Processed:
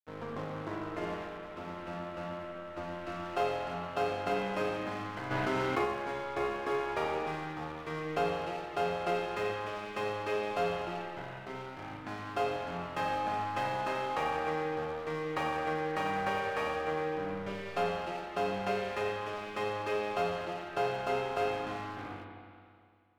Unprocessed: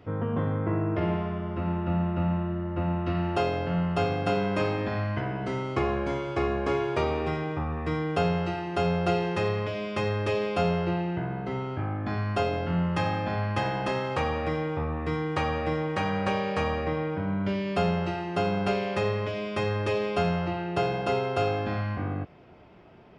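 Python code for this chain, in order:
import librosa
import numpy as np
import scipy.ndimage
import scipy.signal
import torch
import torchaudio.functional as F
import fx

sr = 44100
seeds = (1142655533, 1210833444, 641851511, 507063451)

y = fx.highpass(x, sr, hz=770.0, slope=6)
y = fx.high_shelf(y, sr, hz=2500.0, db=-10.0)
y = np.sign(y) * np.maximum(np.abs(y) - 10.0 ** (-44.5 / 20.0), 0.0)
y = fx.rev_spring(y, sr, rt60_s=2.2, pass_ms=(31, 38, 45), chirp_ms=60, drr_db=1.5)
y = fx.env_flatten(y, sr, amount_pct=70, at=(5.3, 5.84), fade=0.02)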